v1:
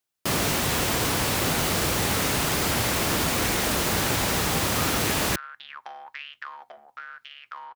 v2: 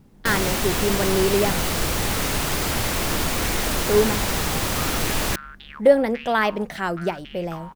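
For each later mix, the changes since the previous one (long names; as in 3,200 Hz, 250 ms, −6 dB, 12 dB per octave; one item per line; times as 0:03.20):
speech: unmuted
master: remove high-pass filter 72 Hz 12 dB per octave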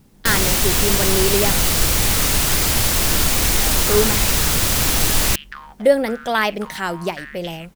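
first sound: add low-shelf EQ 120 Hz +8 dB
second sound: entry −0.90 s
master: add high-shelf EQ 2,800 Hz +10 dB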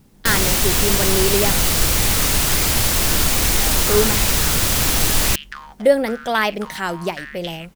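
second sound: remove high-frequency loss of the air 140 metres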